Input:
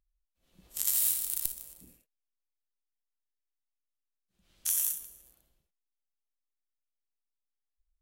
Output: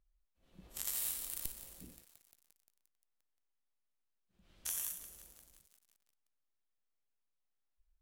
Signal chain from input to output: in parallel at -2 dB: compression 6:1, threshold -36 dBFS, peak gain reduction 13 dB; on the sum: treble shelf 3.4 kHz -11 dB; bit-crushed delay 175 ms, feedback 80%, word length 8-bit, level -14.5 dB; trim -2 dB

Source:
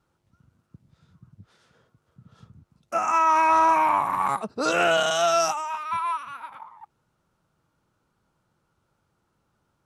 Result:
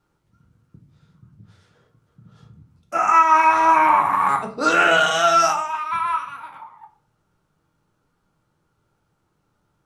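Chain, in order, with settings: dynamic bell 1.6 kHz, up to +7 dB, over -34 dBFS, Q 0.93; on a send: reverberation RT60 0.45 s, pre-delay 6 ms, DRR 2 dB

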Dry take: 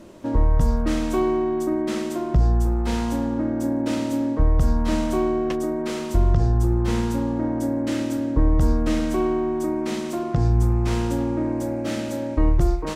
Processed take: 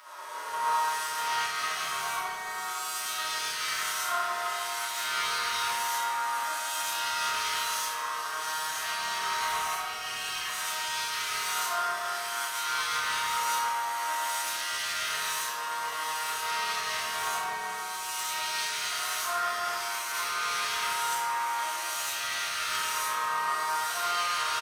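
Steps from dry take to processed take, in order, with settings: reverse spectral sustain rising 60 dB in 2.48 s; high-pass 1.1 kHz 24 dB/octave; band-stop 7.3 kHz, Q 6.4; peak limiter -27 dBFS, peak gain reduction 8 dB; delay 484 ms -12 dB; time stretch by phase-locked vocoder 1.9×; saturation -32.5 dBFS, distortion -17 dB; doubling 30 ms -8 dB; reverberation RT60 2.4 s, pre-delay 4 ms, DRR -5 dB; three bands expanded up and down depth 70%; trim +3.5 dB

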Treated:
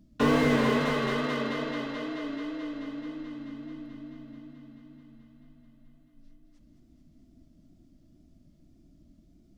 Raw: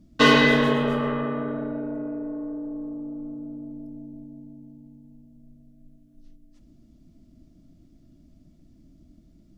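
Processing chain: wow and flutter 90 cents; thinning echo 217 ms, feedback 79%, high-pass 240 Hz, level -8 dB; slew-rate limiter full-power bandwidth 110 Hz; trim -4.5 dB

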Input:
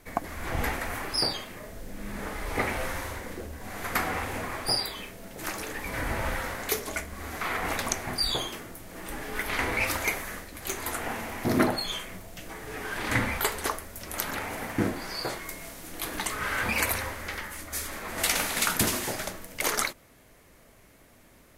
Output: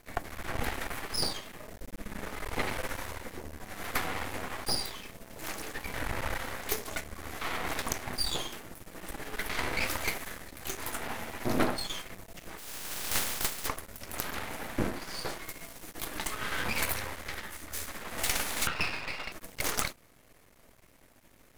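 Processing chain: 12.57–13.66 s: spectral contrast reduction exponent 0.16; 18.67–19.32 s: frequency inversion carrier 2.8 kHz; half-wave rectifier

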